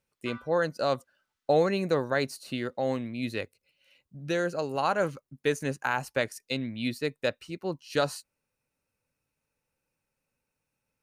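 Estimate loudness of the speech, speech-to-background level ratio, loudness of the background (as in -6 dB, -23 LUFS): -30.0 LUFS, 18.5 dB, -48.5 LUFS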